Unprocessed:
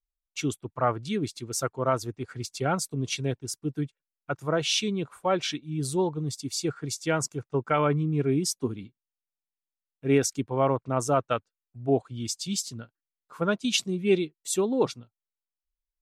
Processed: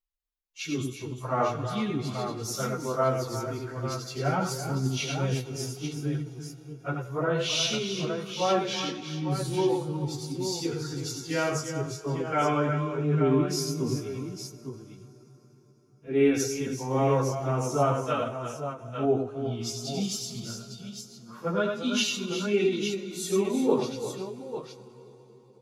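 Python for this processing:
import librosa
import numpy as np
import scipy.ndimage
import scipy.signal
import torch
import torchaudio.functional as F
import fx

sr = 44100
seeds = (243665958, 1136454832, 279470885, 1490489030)

y = fx.echo_multitap(x, sr, ms=(53, 61, 107, 216, 241, 535), db=(-7.0, -7.5, -19.5, -10.0, -14.5, -8.0))
y = fx.rev_fdn(y, sr, rt60_s=3.1, lf_ratio=1.0, hf_ratio=0.75, size_ms=43.0, drr_db=13.0)
y = fx.stretch_vocoder_free(y, sr, factor=1.6)
y = fx.peak_eq(y, sr, hz=8300.0, db=-14.5, octaves=0.22)
y = fx.end_taper(y, sr, db_per_s=160.0)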